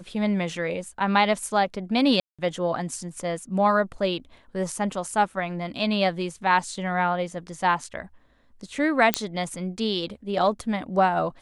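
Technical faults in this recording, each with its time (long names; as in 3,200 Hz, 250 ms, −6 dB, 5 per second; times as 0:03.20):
0:02.20–0:02.39: drop-out 186 ms
0:09.14: click −2 dBFS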